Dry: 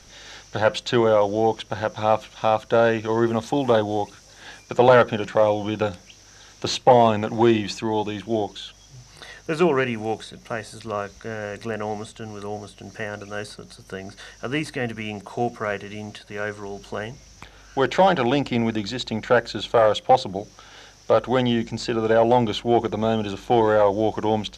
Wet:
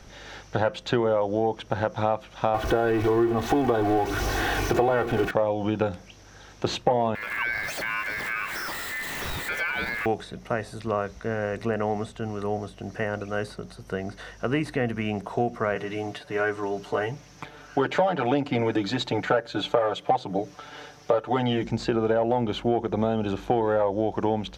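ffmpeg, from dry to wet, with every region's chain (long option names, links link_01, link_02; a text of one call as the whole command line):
ffmpeg -i in.wav -filter_complex "[0:a]asettb=1/sr,asplit=3[link_01][link_02][link_03];[link_01]atrim=end=2.544[link_04];[link_02]atrim=start=2.54:end=5.31,asetpts=PTS-STARTPTS,afade=type=in:duration=0.004:curve=qsin,afade=type=out:start_time=2.766:duration=0.004:curve=qsin,aeval=exprs='val(0)+0.5*0.0944*sgn(val(0))':channel_layout=same,aemphasis=mode=reproduction:type=cd,aecho=1:1:2.7:0.64,atrim=end_sample=122157[link_05];[link_03]atrim=start=5.306[link_06];[link_04][link_05]acrossfade=duration=0.004:curve1=hsin:curve2=qsin[link_07];[link_07][link_06]acrossfade=duration=0.004:curve1=qsin:curve2=hsin,asettb=1/sr,asplit=3[link_08][link_09][link_10];[link_08]atrim=end=7.154[link_11];[link_09]atrim=start=7.15:end=10.06,asetpts=PTS-STARTPTS,afade=type=in:duration=0.004:curve=qsin,afade=type=out:start_time=2.906:duration=0.004:curve=qsin,aeval=exprs='val(0)+0.5*0.0631*sgn(val(0))':channel_layout=same,acompressor=threshold=-26dB:ratio=2.5:attack=3.2:release=140:knee=1:detection=peak,aeval=exprs='val(0)*sin(2*PI*1900*n/s)':channel_layout=same[link_12];[link_10]atrim=start=10.056[link_13];[link_11][link_12]acrossfade=duration=0.004:curve1=hsin:curve2=qsin[link_14];[link_14][link_13]acrossfade=duration=0.004:curve1=qsin:curve2=hsin,asettb=1/sr,asplit=3[link_15][link_16][link_17];[link_15]atrim=end=15.754[link_18];[link_16]atrim=start=15.75:end=21.64,asetpts=PTS-STARTPTS,afade=type=in:duration=0.004:curve=qsin,afade=type=out:start_time=5.886:duration=0.004:curve=qsin,highpass=frequency=180:poles=1,aecho=1:1:6.8:0.97,atrim=end_sample=259749[link_19];[link_17]atrim=start=21.636[link_20];[link_18][link_19]acrossfade=duration=0.004:curve1=hsin:curve2=qsin[link_21];[link_21][link_20]acrossfade=duration=0.004:curve1=qsin:curve2=hsin,equalizer=frequency=6700:width=0.4:gain=-11,acompressor=threshold=-24dB:ratio=6,volume=4dB" out.wav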